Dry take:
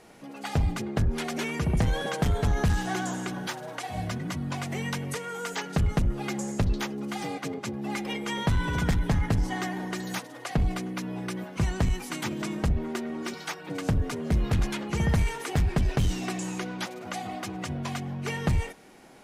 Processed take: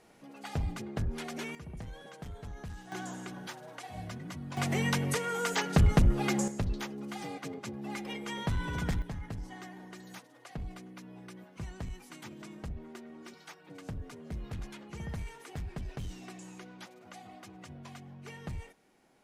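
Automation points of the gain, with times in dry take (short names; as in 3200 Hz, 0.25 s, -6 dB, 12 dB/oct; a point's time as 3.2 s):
-8 dB
from 1.55 s -19 dB
from 2.92 s -9.5 dB
from 4.57 s +2 dB
from 6.48 s -7 dB
from 9.02 s -15 dB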